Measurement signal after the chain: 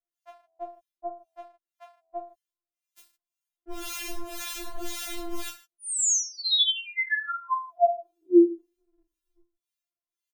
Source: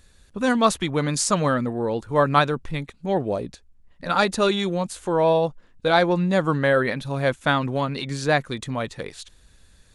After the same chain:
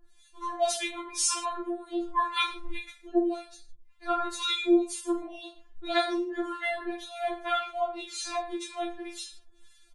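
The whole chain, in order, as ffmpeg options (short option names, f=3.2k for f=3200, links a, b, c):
-filter_complex "[0:a]equalizer=f=78:w=0.99:g=-12,acrossover=split=1100[a][b];[a]aeval=exprs='val(0)*(1-1/2+1/2*cos(2*PI*1.9*n/s))':c=same[c];[b]aeval=exprs='val(0)*(1-1/2-1/2*cos(2*PI*1.9*n/s))':c=same[d];[c][d]amix=inputs=2:normalize=0,aecho=1:1:20|44|72.8|107.4|148.8:0.631|0.398|0.251|0.158|0.1,afftfilt=real='re*4*eq(mod(b,16),0)':imag='im*4*eq(mod(b,16),0)':win_size=2048:overlap=0.75"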